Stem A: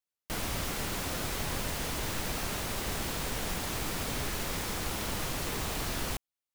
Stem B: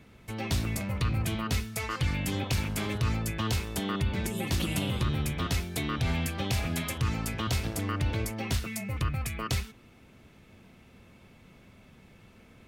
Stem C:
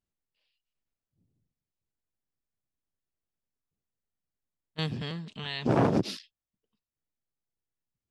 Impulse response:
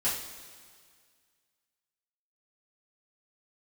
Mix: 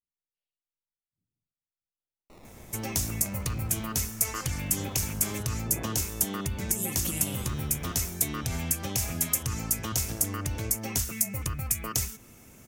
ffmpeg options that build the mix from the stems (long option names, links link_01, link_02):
-filter_complex "[0:a]acrusher=samples=21:mix=1:aa=0.000001:lfo=1:lforange=21:lforate=0.31,adelay=2000,volume=-17dB,asplit=3[link_01][link_02][link_03];[link_01]atrim=end=5.05,asetpts=PTS-STARTPTS,afade=type=out:start_time=5.046:duration=0.004:curve=hsin[link_04];[link_02]atrim=start=5.05:end=7.33,asetpts=PTS-STARTPTS,volume=0[link_05];[link_03]atrim=start=7.33,asetpts=PTS-STARTPTS,afade=type=in:duration=0.004:curve=hsin[link_06];[link_04][link_05][link_06]concat=n=3:v=0:a=1[link_07];[1:a]highshelf=frequency=5300:width_type=q:width=1.5:gain=7,acompressor=threshold=-35dB:ratio=2,aexciter=amount=3:drive=2.3:freq=5300,adelay=2450,volume=2dB[link_08];[2:a]tiltshelf=frequency=970:gain=4.5,volume=-19dB[link_09];[link_07][link_08][link_09]amix=inputs=3:normalize=0"